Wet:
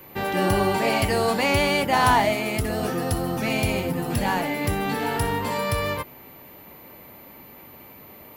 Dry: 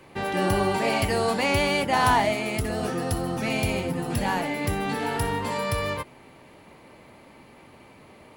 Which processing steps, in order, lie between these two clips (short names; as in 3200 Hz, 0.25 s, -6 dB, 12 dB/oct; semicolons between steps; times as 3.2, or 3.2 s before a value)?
whine 14000 Hz -48 dBFS; gain +2 dB